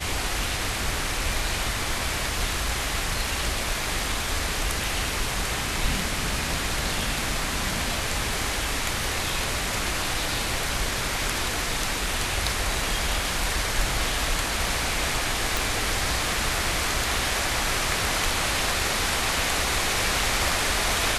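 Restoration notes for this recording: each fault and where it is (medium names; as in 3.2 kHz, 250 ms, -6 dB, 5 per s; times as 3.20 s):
15.57 s: pop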